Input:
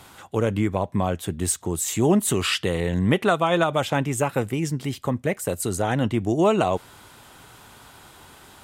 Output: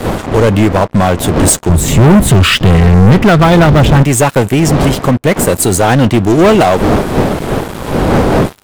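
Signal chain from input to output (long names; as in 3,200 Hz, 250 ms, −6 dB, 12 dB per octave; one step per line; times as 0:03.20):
wind on the microphone 480 Hz −32 dBFS
0:01.69–0:04.03: bass and treble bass +13 dB, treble −9 dB
leveller curve on the samples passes 5
level −1 dB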